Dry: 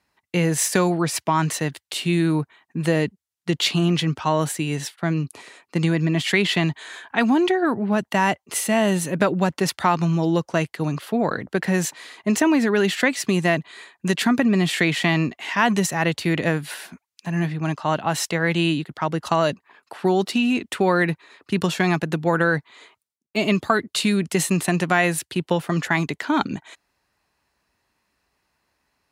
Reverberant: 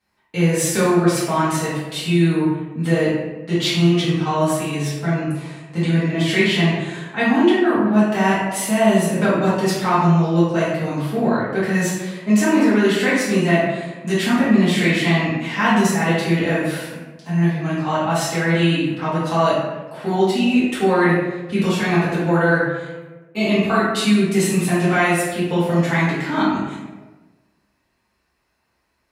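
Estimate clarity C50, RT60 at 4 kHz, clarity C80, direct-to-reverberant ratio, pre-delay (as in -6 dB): -1.0 dB, 0.65 s, 2.5 dB, -11.0 dB, 4 ms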